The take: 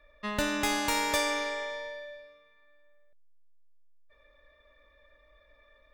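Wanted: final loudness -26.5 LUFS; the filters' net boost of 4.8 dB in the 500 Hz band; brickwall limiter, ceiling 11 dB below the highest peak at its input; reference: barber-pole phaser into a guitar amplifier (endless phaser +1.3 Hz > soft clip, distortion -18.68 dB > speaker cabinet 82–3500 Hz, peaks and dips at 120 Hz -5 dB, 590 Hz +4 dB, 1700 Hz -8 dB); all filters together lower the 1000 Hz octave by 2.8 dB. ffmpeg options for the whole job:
-filter_complex "[0:a]equalizer=f=500:t=o:g=3,equalizer=f=1k:t=o:g=-4,alimiter=level_in=1.5dB:limit=-24dB:level=0:latency=1,volume=-1.5dB,asplit=2[a][b];[b]afreqshift=1.3[c];[a][c]amix=inputs=2:normalize=1,asoftclip=threshold=-31.5dB,highpass=82,equalizer=f=120:t=q:w=4:g=-5,equalizer=f=590:t=q:w=4:g=4,equalizer=f=1.7k:t=q:w=4:g=-8,lowpass=f=3.5k:w=0.5412,lowpass=f=3.5k:w=1.3066,volume=13dB"

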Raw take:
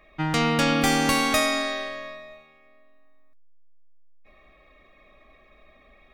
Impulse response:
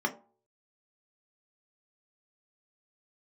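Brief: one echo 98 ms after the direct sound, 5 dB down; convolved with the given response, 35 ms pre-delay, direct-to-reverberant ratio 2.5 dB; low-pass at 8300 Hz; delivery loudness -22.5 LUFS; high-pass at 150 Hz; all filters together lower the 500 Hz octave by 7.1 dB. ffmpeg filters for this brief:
-filter_complex "[0:a]highpass=150,lowpass=8.3k,equalizer=f=500:t=o:g=-9,aecho=1:1:98:0.562,asplit=2[a][b];[1:a]atrim=start_sample=2205,adelay=35[c];[b][c]afir=irnorm=-1:irlink=0,volume=-11dB[d];[a][d]amix=inputs=2:normalize=0,volume=-2dB"

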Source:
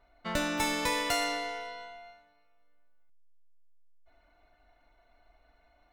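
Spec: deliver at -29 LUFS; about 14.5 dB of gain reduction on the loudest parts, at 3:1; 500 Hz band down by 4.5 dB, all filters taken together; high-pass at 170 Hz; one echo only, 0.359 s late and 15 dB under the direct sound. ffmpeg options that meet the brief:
-af "highpass=170,equalizer=f=500:t=o:g=-6,acompressor=threshold=-47dB:ratio=3,aecho=1:1:359:0.178,volume=16.5dB"

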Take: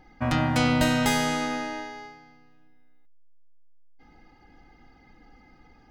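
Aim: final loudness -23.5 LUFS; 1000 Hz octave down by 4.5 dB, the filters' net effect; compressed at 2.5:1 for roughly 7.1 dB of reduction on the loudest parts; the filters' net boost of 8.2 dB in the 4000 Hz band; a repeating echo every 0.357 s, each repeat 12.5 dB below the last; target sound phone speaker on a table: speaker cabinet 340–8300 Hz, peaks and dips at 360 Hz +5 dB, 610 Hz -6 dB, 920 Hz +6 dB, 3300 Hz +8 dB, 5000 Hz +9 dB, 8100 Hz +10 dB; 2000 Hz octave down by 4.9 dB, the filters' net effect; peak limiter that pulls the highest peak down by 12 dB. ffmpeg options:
-af "equalizer=f=1k:t=o:g=-8,equalizer=f=2k:t=o:g=-6,equalizer=f=4k:t=o:g=4,acompressor=threshold=-30dB:ratio=2.5,alimiter=level_in=5.5dB:limit=-24dB:level=0:latency=1,volume=-5.5dB,highpass=f=340:w=0.5412,highpass=f=340:w=1.3066,equalizer=f=360:t=q:w=4:g=5,equalizer=f=610:t=q:w=4:g=-6,equalizer=f=920:t=q:w=4:g=6,equalizer=f=3.3k:t=q:w=4:g=8,equalizer=f=5k:t=q:w=4:g=9,equalizer=f=8.1k:t=q:w=4:g=10,lowpass=f=8.3k:w=0.5412,lowpass=f=8.3k:w=1.3066,aecho=1:1:357|714|1071:0.237|0.0569|0.0137,volume=14.5dB"

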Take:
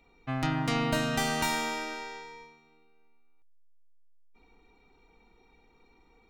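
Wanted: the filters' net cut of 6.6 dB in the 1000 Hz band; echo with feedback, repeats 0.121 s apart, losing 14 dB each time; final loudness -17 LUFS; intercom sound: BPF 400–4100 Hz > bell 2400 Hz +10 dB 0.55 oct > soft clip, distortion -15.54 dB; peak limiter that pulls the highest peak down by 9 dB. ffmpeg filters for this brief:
-af "equalizer=f=1k:t=o:g=-9,alimiter=level_in=0.5dB:limit=-24dB:level=0:latency=1,volume=-0.5dB,highpass=400,lowpass=4.1k,equalizer=f=2.4k:t=o:w=0.55:g=10,aecho=1:1:121|242:0.2|0.0399,asoftclip=threshold=-29.5dB,volume=18.5dB"

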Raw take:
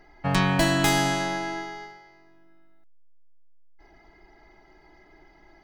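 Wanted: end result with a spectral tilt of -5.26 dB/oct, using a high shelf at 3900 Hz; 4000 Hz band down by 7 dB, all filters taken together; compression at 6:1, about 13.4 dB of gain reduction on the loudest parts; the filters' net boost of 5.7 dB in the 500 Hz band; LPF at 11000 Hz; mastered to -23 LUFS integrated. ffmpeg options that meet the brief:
-af "lowpass=11k,equalizer=f=500:t=o:g=9,highshelf=f=3.9k:g=-6.5,equalizer=f=4k:t=o:g=-5.5,acompressor=threshold=-30dB:ratio=6,volume=11dB"

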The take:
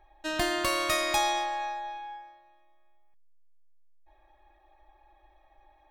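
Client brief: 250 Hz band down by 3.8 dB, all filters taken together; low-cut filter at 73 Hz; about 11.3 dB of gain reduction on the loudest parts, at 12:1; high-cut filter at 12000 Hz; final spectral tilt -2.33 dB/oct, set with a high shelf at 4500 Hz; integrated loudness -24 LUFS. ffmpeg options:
-af "highpass=73,lowpass=12k,equalizer=f=250:t=o:g=-6.5,highshelf=f=4.5k:g=8,acompressor=threshold=-32dB:ratio=12,volume=11.5dB"

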